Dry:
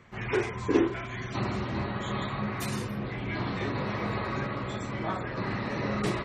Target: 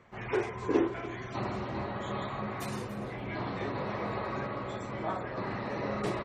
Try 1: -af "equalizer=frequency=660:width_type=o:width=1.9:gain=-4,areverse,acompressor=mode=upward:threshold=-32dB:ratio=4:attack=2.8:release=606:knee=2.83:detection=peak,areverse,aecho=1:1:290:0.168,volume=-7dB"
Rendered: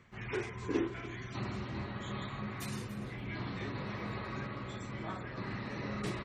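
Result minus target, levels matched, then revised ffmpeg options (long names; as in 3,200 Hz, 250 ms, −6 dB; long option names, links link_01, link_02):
500 Hz band −3.5 dB
-af "equalizer=frequency=660:width_type=o:width=1.9:gain=7.5,areverse,acompressor=mode=upward:threshold=-32dB:ratio=4:attack=2.8:release=606:knee=2.83:detection=peak,areverse,aecho=1:1:290:0.168,volume=-7dB"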